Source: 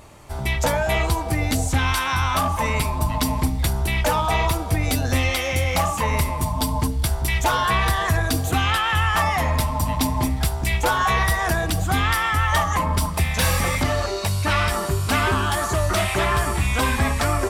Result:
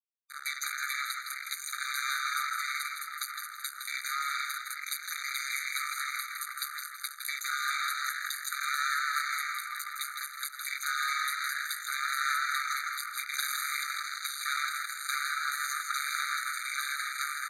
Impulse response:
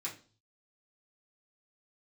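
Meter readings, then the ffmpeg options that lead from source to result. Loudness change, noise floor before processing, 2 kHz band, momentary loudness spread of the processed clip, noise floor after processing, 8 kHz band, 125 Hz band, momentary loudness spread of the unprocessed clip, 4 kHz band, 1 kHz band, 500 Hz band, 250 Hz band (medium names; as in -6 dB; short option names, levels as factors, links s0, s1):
-11.0 dB, -27 dBFS, -7.0 dB, 7 LU, -45 dBFS, -7.0 dB, under -40 dB, 4 LU, -8.0 dB, -12.0 dB, under -40 dB, under -40 dB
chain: -filter_complex "[0:a]aecho=1:1:0.8:0.48,acompressor=threshold=0.0891:ratio=6,tremolo=f=140:d=0.71,acrusher=bits=3:mix=0:aa=0.5,aresample=32000,aresample=44100,asplit=5[s0][s1][s2][s3][s4];[s1]adelay=162,afreqshift=140,volume=0.473[s5];[s2]adelay=324,afreqshift=280,volume=0.166[s6];[s3]adelay=486,afreqshift=420,volume=0.0582[s7];[s4]adelay=648,afreqshift=560,volume=0.0202[s8];[s0][s5][s6][s7][s8]amix=inputs=5:normalize=0,afftfilt=real='re*eq(mod(floor(b*sr/1024/1200),2),1)':imag='im*eq(mod(floor(b*sr/1024/1200),2),1)':win_size=1024:overlap=0.75"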